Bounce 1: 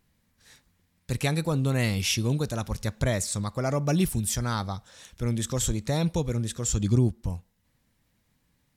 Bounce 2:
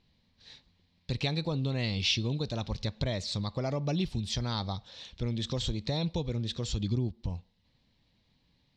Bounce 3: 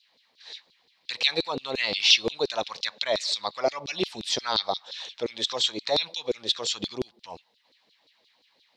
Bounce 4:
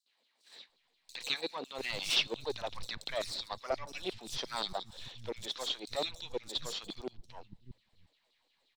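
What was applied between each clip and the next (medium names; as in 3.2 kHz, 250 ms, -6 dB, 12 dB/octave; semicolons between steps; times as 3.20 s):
treble shelf 5.1 kHz -6 dB; compression 2.5:1, threshold -30 dBFS, peak gain reduction 9 dB; FFT filter 960 Hz 0 dB, 1.4 kHz -7 dB, 4.2 kHz +11 dB, 11 kHz -26 dB
LFO high-pass saw down 5.7 Hz 340–4500 Hz; trim +7.5 dB
partial rectifier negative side -7 dB; three bands offset in time highs, mids, lows 60/690 ms, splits 180/5600 Hz; trim -7 dB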